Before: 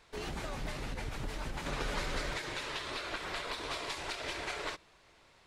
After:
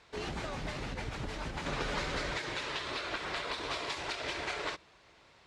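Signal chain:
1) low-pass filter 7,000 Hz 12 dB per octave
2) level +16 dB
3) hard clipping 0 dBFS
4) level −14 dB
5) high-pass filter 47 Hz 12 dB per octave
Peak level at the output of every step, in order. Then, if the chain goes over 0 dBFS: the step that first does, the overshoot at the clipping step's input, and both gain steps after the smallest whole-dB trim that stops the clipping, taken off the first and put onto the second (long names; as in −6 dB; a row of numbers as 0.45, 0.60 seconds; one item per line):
−22.0, −6.0, −6.0, −20.0, −22.5 dBFS
no step passes full scale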